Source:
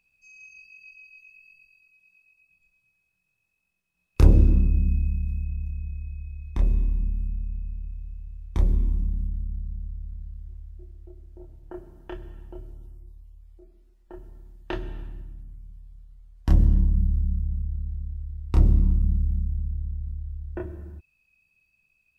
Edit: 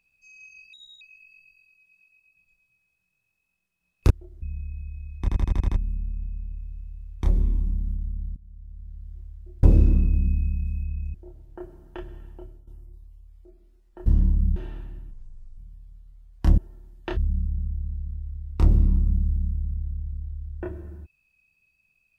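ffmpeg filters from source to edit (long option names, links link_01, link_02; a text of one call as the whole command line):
ffmpeg -i in.wav -filter_complex "[0:a]asplit=22[link_01][link_02][link_03][link_04][link_05][link_06][link_07][link_08][link_09][link_10][link_11][link_12][link_13][link_14][link_15][link_16][link_17][link_18][link_19][link_20][link_21][link_22];[link_01]atrim=end=0.734[link_23];[link_02]atrim=start=0.73:end=1.15,asetpts=PTS-STARTPTS,asetrate=65709,aresample=44100[link_24];[link_03]atrim=start=1.146:end=4.242[link_25];[link_04]atrim=start=10.958:end=11.282[link_26];[link_05]atrim=start=5.748:end=6.612[link_27];[link_06]atrim=start=6.528:end=6.612[link_28];[link_07]atrim=start=6.528:end=6.612[link_29];[link_08]atrim=start=6.528:end=6.612[link_30];[link_09]atrim=start=6.528:end=6.612[link_31];[link_10]atrim=start=6.528:end=6.612[link_32];[link_11]atrim=start=6.528:end=6.612[link_33];[link_12]atrim=start=7.088:end=9.69,asetpts=PTS-STARTPTS,afade=type=out:start_time=2.598:duration=0.004:curve=hsin:silence=0.0944061[link_34];[link_13]atrim=start=9.69:end=10.962,asetpts=PTS-STARTPTS,afade=type=in:duration=0.76:silence=0.0944061[link_35];[link_14]atrim=start=4.238:end=5.752[link_36];[link_15]atrim=start=11.278:end=12.81,asetpts=PTS-STARTPTS,afade=type=out:start_time=1.072:duration=0.46:curve=qsin:silence=0.223872[link_37];[link_16]atrim=start=12.81:end=14.202,asetpts=PTS-STARTPTS,afade=type=in:duration=0.004:curve=hsin:silence=0.223872[link_38];[link_17]atrim=start=16.608:end=17.112[link_39];[link_18]atrim=start=14.788:end=15.344[link_40];[link_19]atrim=start=15.34:end=15.61,asetpts=PTS-STARTPTS,asetrate=25578,aresample=44100,atrim=end_sample=20529,asetpts=PTS-STARTPTS[link_41];[link_20]atrim=start=15.606:end=16.612[link_42];[link_21]atrim=start=14.198:end=14.792[link_43];[link_22]atrim=start=17.108[link_44];[link_23][link_24]acrossfade=duration=0.004:curve1=hsin:curve2=hsin[link_45];[link_45][link_25]acrossfade=duration=0.004:curve1=hsin:curve2=hsin[link_46];[link_46][link_26]acrossfade=duration=0.004:curve1=hsin:curve2=hsin[link_47];[link_47][link_27]acrossfade=duration=0.004:curve1=hsin:curve2=hsin[link_48];[link_48][link_28]acrossfade=duration=0.004:curve1=hsin:curve2=hsin[link_49];[link_49][link_29]acrossfade=duration=0.004:curve1=hsin:curve2=hsin[link_50];[link_50][link_30]acrossfade=duration=0.004:curve1=hsin:curve2=hsin[link_51];[link_51][link_31]acrossfade=duration=0.004:curve1=hsin:curve2=hsin[link_52];[link_52][link_32]acrossfade=duration=0.004:curve1=hsin:curve2=hsin[link_53];[link_53][link_33]acrossfade=duration=0.004:curve1=hsin:curve2=hsin[link_54];[link_34][link_35]concat=n=2:v=0:a=1[link_55];[link_54][link_55]acrossfade=duration=0.004:curve1=hsin:curve2=hsin[link_56];[link_56][link_36]acrossfade=duration=0.004:curve1=hsin:curve2=hsin[link_57];[link_37][link_38]concat=n=2:v=0:a=1[link_58];[link_57][link_58]acrossfade=duration=0.004:curve1=hsin:curve2=hsin[link_59];[link_59][link_39]acrossfade=duration=0.004:curve1=hsin:curve2=hsin[link_60];[link_60][link_40]acrossfade=duration=0.004:curve1=hsin:curve2=hsin[link_61];[link_61][link_41]acrossfade=duration=0.004:curve1=hsin:curve2=hsin[link_62];[link_62][link_42]acrossfade=duration=0.004:curve1=hsin:curve2=hsin[link_63];[link_63][link_43]acrossfade=duration=0.004:curve1=hsin:curve2=hsin[link_64];[link_64][link_44]acrossfade=duration=0.004:curve1=hsin:curve2=hsin" out.wav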